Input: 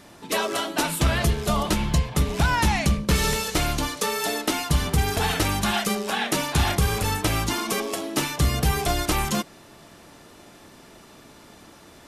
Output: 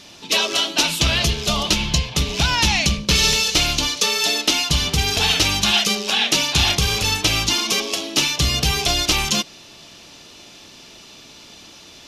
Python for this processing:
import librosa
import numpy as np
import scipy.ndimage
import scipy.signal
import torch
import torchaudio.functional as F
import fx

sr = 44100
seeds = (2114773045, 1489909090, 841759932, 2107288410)

y = fx.band_shelf(x, sr, hz=4000.0, db=12.5, octaves=1.7)